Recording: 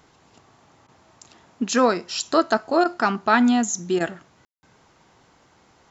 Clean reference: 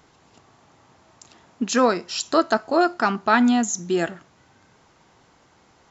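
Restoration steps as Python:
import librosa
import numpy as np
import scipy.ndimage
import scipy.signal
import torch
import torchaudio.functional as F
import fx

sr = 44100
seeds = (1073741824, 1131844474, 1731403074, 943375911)

y = fx.fix_ambience(x, sr, seeds[0], print_start_s=5.3, print_end_s=5.8, start_s=4.45, end_s=4.63)
y = fx.fix_interpolate(y, sr, at_s=(0.87, 2.84, 3.99), length_ms=12.0)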